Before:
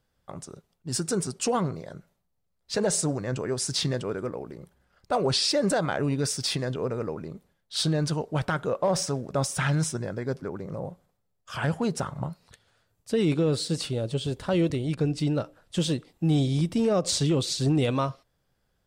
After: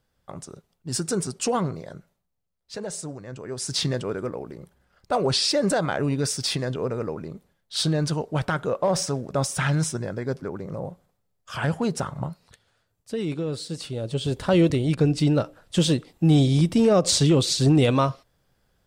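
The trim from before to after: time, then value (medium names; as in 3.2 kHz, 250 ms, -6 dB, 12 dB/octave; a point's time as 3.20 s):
1.93 s +1.5 dB
2.82 s -8 dB
3.37 s -8 dB
3.77 s +2 dB
12.22 s +2 dB
13.23 s -4.5 dB
13.79 s -4.5 dB
14.39 s +5.5 dB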